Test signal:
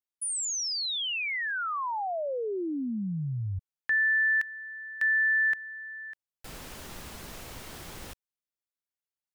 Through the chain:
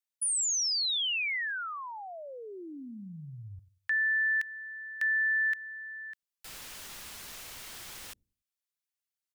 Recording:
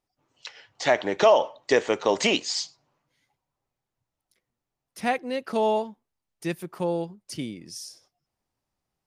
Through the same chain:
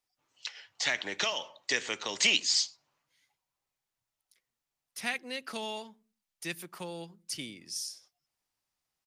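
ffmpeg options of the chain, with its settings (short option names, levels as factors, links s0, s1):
-filter_complex "[0:a]tiltshelf=f=970:g=-7.5,acrossover=split=290|1500|2500[s0][s1][s2][s3];[s0]aecho=1:1:95|190|285:0.178|0.0533|0.016[s4];[s1]acompressor=threshold=0.0141:ratio=6:release=128:knee=6:detection=rms[s5];[s4][s5][s2][s3]amix=inputs=4:normalize=0,volume=0.562"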